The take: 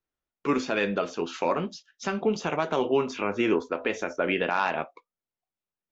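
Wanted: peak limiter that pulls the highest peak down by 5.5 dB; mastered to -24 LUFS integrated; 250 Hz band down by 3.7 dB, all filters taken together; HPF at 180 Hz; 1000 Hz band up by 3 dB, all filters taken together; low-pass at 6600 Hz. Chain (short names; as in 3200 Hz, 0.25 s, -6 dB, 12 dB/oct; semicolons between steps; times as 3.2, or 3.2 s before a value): HPF 180 Hz; LPF 6600 Hz; bell 250 Hz -4 dB; bell 1000 Hz +4 dB; gain +5 dB; limiter -10.5 dBFS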